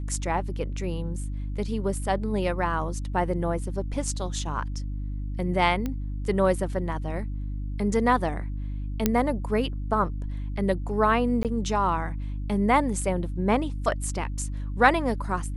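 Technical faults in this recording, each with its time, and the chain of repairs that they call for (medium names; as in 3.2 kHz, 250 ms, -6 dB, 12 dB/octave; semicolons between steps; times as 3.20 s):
hum 50 Hz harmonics 6 -31 dBFS
5.86 s: pop -17 dBFS
9.06 s: pop -6 dBFS
11.43–11.45 s: dropout 18 ms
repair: de-click; de-hum 50 Hz, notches 6; interpolate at 11.43 s, 18 ms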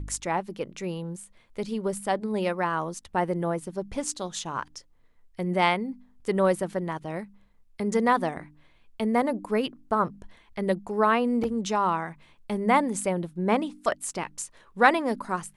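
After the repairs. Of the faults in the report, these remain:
nothing left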